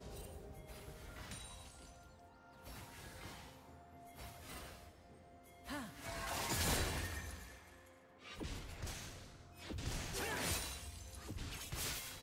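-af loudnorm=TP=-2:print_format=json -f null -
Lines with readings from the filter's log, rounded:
"input_i" : "-44.2",
"input_tp" : "-24.2",
"input_lra" : "11.5",
"input_thresh" : "-55.1",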